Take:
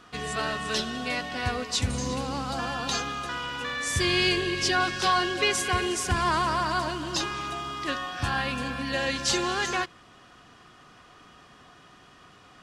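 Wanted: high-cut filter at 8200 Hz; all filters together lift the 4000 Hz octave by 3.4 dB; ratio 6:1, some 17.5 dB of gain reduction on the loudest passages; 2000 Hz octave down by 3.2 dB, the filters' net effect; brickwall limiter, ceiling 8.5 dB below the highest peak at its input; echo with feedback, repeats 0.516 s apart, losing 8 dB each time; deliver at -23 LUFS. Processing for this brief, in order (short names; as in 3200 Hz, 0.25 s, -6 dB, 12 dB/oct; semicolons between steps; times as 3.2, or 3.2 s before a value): LPF 8200 Hz; bell 2000 Hz -6 dB; bell 4000 Hz +6.5 dB; compressor 6:1, threshold -39 dBFS; limiter -35 dBFS; feedback echo 0.516 s, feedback 40%, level -8 dB; gain +20.5 dB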